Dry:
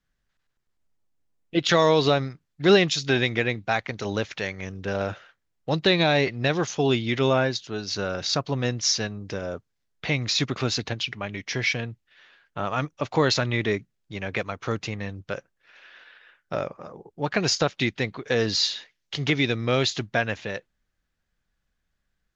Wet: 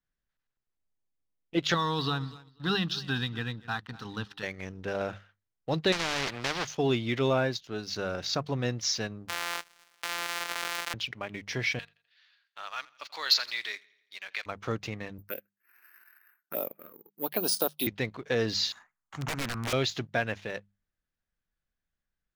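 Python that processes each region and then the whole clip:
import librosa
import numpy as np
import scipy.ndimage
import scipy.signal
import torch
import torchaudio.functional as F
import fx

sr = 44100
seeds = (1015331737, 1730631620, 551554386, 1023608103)

y = fx.chain(x, sr, fx.peak_eq(hz=370.0, db=-13.0, octaves=0.21),
    fx.fixed_phaser(hz=2200.0, stages=6),
    fx.echo_feedback(ms=245, feedback_pct=26, wet_db=-18.0), at=(1.74, 4.43))
y = fx.chain(y, sr, fx.dead_time(dead_ms=0.15),
    fx.lowpass(hz=2500.0, slope=12),
    fx.spectral_comp(ratio=4.0), at=(5.92, 6.65))
y = fx.chain(y, sr, fx.sample_sort(block=256),
    fx.highpass(hz=1300.0, slope=12),
    fx.env_flatten(amount_pct=100), at=(9.28, 10.94))
y = fx.chain(y, sr, fx.highpass(hz=1500.0, slope=12),
    fx.peak_eq(hz=4500.0, db=12.5, octaves=0.49),
    fx.echo_feedback(ms=84, feedback_pct=55, wet_db=-19), at=(11.79, 14.46))
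y = fx.chain(y, sr, fx.highpass(hz=220.0, slope=24),
    fx.env_phaser(low_hz=550.0, high_hz=2100.0, full_db=-22.5),
    fx.resample_bad(factor=3, down='filtered', up='zero_stuff'), at=(15.18, 17.87))
y = fx.chain(y, sr, fx.curve_eq(hz=(240.0, 480.0, 730.0, 1200.0, 3100.0, 5000.0, 7200.0), db=(0, -14, 5, 12, -18, -20, 4)),
    fx.overflow_wrap(gain_db=21.5),
    fx.doppler_dist(depth_ms=0.25), at=(18.72, 19.73))
y = fx.high_shelf(y, sr, hz=6300.0, db=-5.5)
y = fx.hum_notches(y, sr, base_hz=50, count=4)
y = fx.leveller(y, sr, passes=1)
y = F.gain(torch.from_numpy(y), -8.0).numpy()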